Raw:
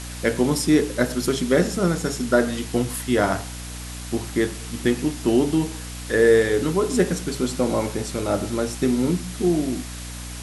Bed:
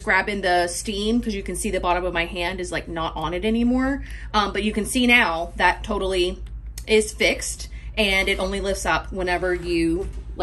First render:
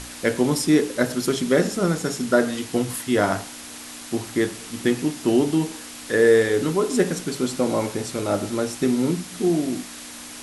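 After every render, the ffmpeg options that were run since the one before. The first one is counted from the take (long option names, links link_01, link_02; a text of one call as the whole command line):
ffmpeg -i in.wav -af "bandreject=frequency=60:width_type=h:width=6,bandreject=frequency=120:width_type=h:width=6,bandreject=frequency=180:width_type=h:width=6" out.wav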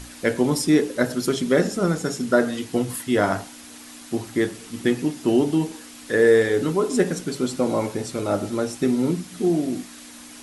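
ffmpeg -i in.wav -af "afftdn=noise_reduction=6:noise_floor=-38" out.wav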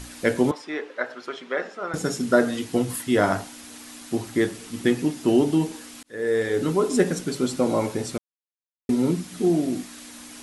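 ffmpeg -i in.wav -filter_complex "[0:a]asettb=1/sr,asplit=3[link_01][link_02][link_03];[link_01]atrim=end=0.514[link_04];[link_02]atrim=start=0.51:end=1.94,asetpts=PTS-STARTPTS,afade=type=in:duration=0.004:curve=qsin,afade=type=out:start_time=1.426:duration=0.004:curve=qsin,highpass=780,lowpass=2200[link_05];[link_03]atrim=start=1.936[link_06];[link_04][link_05]acrossfade=duration=0.004:curve1=hsin:curve2=qsin[link_07];[link_07][link_06]acrossfade=duration=0.004:curve1=qsin:curve2=hsin,asplit=4[link_08][link_09][link_10][link_11];[link_08]atrim=end=6.03,asetpts=PTS-STARTPTS,afade=type=out:start_time=6.026:duration=0.004:curve=hsin[link_12];[link_09]atrim=start=6.03:end=8.18,asetpts=PTS-STARTPTS,afade=type=in:duration=0.7,afade=type=out:start_time=2.146:duration=0.004:curve=hsin[link_13];[link_10]atrim=start=8.18:end=8.89,asetpts=PTS-STARTPTS,volume=0[link_14];[link_11]atrim=start=8.89,asetpts=PTS-STARTPTS,afade=type=in:duration=0.004:curve=hsin[link_15];[link_12][link_13][link_14][link_15]concat=n=4:v=0:a=1" out.wav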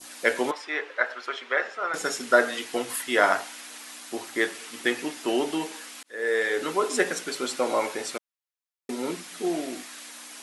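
ffmpeg -i in.wav -af "highpass=500,adynamicequalizer=threshold=0.00794:dfrequency=2000:dqfactor=0.74:tfrequency=2000:tqfactor=0.74:attack=5:release=100:ratio=0.375:range=3:mode=boostabove:tftype=bell" out.wav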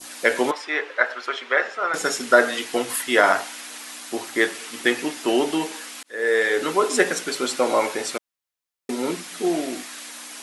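ffmpeg -i in.wav -af "volume=5dB,alimiter=limit=-3dB:level=0:latency=1" out.wav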